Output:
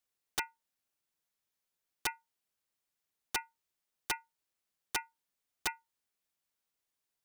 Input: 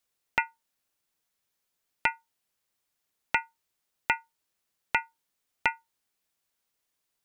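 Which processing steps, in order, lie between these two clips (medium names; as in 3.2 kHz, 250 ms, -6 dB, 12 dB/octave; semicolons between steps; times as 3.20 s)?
integer overflow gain 17.5 dB; trim -6.5 dB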